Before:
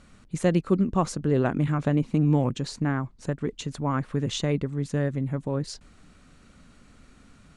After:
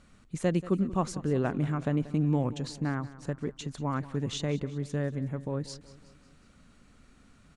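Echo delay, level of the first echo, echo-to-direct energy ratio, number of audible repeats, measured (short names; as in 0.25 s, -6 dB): 0.184 s, -17.0 dB, -15.5 dB, 4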